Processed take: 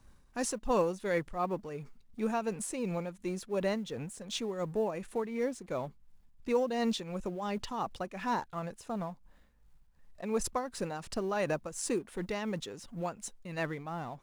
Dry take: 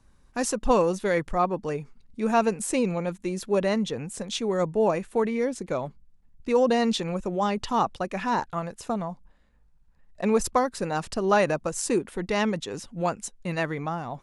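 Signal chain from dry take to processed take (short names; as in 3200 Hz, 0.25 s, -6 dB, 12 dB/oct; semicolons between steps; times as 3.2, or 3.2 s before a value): G.711 law mismatch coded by mu; tremolo triangle 2.8 Hz, depth 65%; gain -6 dB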